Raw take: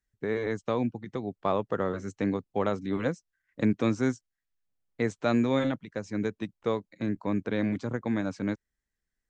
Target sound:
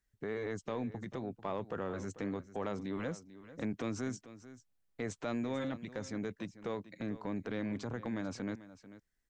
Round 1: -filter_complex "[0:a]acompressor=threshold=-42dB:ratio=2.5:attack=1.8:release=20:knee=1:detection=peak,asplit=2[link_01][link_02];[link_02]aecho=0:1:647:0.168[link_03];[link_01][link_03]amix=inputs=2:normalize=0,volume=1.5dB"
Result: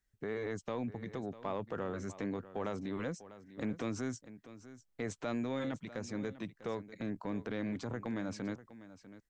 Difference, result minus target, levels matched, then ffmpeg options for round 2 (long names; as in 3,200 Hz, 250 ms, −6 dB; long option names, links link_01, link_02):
echo 205 ms late
-filter_complex "[0:a]acompressor=threshold=-42dB:ratio=2.5:attack=1.8:release=20:knee=1:detection=peak,asplit=2[link_01][link_02];[link_02]aecho=0:1:442:0.168[link_03];[link_01][link_03]amix=inputs=2:normalize=0,volume=1.5dB"